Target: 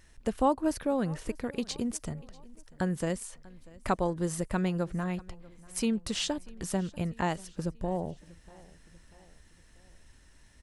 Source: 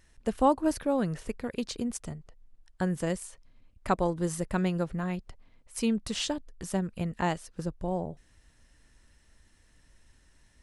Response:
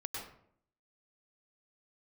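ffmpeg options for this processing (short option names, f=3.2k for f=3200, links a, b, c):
-filter_complex "[0:a]asplit=2[a][b];[b]acompressor=threshold=-36dB:ratio=6,volume=2.5dB[c];[a][c]amix=inputs=2:normalize=0,aecho=1:1:640|1280|1920:0.0708|0.0368|0.0191,volume=-4dB"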